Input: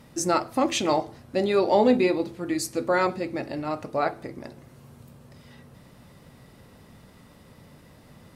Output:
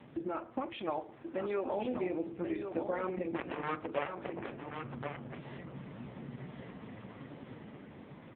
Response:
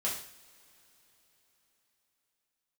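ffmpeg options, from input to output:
-filter_complex "[0:a]asettb=1/sr,asplit=3[a][b][c];[a]atrim=end=0.604[d];[b]atrim=start=0.6:end=1.68,asetpts=PTS-STARTPTS,afade=t=in:d=0.004:c=qsin,afade=t=out:st=1.076:d=0.004:c=qsin,lowshelf=f=280:g=-10.5[e];[c]atrim=start=1.676[f];[d][e]acrossfade=d=0.004:c1=hsin:c2=qsin[g];[g][f]acrossfade=d=0.004:c1=qsin:c2=hsin,dynaudnorm=f=600:g=5:m=6.5dB,alimiter=limit=-13dB:level=0:latency=1:release=162,acompressor=threshold=-40dB:ratio=2.5,asettb=1/sr,asplit=3[h][i][j];[h]atrim=end=3.344[k];[i]atrim=start=3.34:end=4.51,asetpts=PTS-STARTPTS,afade=t=in:d=0.004:c=qsin,afade=t=out:st=1.166:d=0.004:c=qsin,aeval=exprs='0.0668*(cos(1*acos(clip(val(0)/0.0668,-1,1)))-cos(1*PI/2))+0.00188*(cos(3*acos(clip(val(0)/0.0668,-1,1)))-cos(3*PI/2))+0.000473*(cos(4*acos(clip(val(0)/0.0668,-1,1)))-cos(4*PI/2))+0.0106*(cos(5*acos(clip(val(0)/0.0668,-1,1)))-cos(5*PI/2))+0.0299*(cos(7*acos(clip(val(0)/0.0668,-1,1)))-cos(7*PI/2))':c=same[l];[j]atrim=start=4.506[m];[k][l]acrossfade=d=0.004:c1=hsin:c2=qsin[n];[n][m]acrossfade=d=0.004:c1=qsin:c2=hsin,flanger=delay=2.4:depth=8.1:regen=-74:speed=0.27:shape=sinusoidal,highpass=130,lowpass=3.1k,aecho=1:1:1081:0.473,asplit=2[o][p];[1:a]atrim=start_sample=2205,asetrate=30429,aresample=44100,lowshelf=f=260:g=7.5[q];[p][q]afir=irnorm=-1:irlink=0,volume=-27dB[r];[o][r]amix=inputs=2:normalize=0,volume=6dB" -ar 8000 -c:a libopencore_amrnb -b:a 4750

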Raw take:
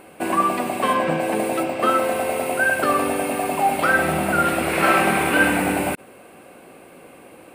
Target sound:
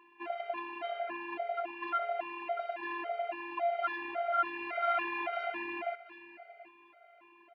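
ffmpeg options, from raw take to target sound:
-af "asoftclip=type=tanh:threshold=-16dB,lowshelf=f=560:t=q:w=1.5:g=-9,afftfilt=real='hypot(re,im)*cos(PI*b)':imag='0':win_size=512:overlap=0.75,highpass=f=120:w=0.5412,highpass=f=120:w=1.3066,equalizer=f=140:t=q:w=4:g=-8,equalizer=f=260:t=q:w=4:g=-9,equalizer=f=490:t=q:w=4:g=-7,equalizer=f=1.2k:t=q:w=4:g=-8,equalizer=f=2.1k:t=q:w=4:g=-4,lowpass=f=2.7k:w=0.5412,lowpass=f=2.7k:w=1.3066,bandreject=f=60:t=h:w=6,bandreject=f=120:t=h:w=6,bandreject=f=180:t=h:w=6,aecho=1:1:731|1462:0.158|0.0349,afftfilt=real='re*gt(sin(2*PI*1.8*pts/sr)*(1-2*mod(floor(b*sr/1024/400),2)),0)':imag='im*gt(sin(2*PI*1.8*pts/sr)*(1-2*mod(floor(b*sr/1024/400),2)),0)':win_size=1024:overlap=0.75,volume=-2dB"

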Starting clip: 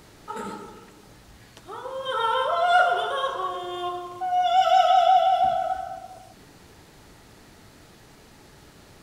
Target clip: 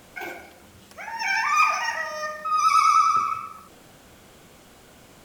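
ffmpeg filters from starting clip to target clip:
-af "asetrate=75852,aresample=44100"

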